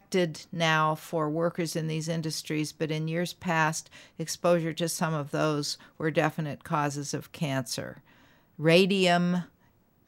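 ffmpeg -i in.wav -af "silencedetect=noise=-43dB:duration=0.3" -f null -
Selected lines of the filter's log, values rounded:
silence_start: 7.98
silence_end: 8.59 | silence_duration: 0.61
silence_start: 9.46
silence_end: 10.08 | silence_duration: 0.62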